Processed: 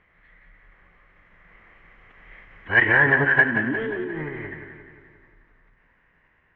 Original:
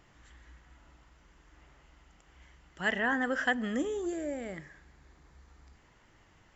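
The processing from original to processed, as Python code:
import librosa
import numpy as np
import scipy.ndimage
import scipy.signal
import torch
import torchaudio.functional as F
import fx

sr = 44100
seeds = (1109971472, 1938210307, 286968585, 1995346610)

p1 = fx.doppler_pass(x, sr, speed_mps=17, closest_m=14.0, pass_at_s=2.71)
p2 = 10.0 ** (-19.0 / 20.0) * np.tanh(p1 / 10.0 ** (-19.0 / 20.0))
p3 = fx.pitch_keep_formants(p2, sr, semitones=-10.5)
p4 = fx.lowpass_res(p3, sr, hz=2000.0, q=3.6)
p5 = p4 + fx.echo_feedback(p4, sr, ms=177, feedback_pct=56, wet_db=-8.5, dry=0)
y = p5 * 10.0 ** (9.0 / 20.0)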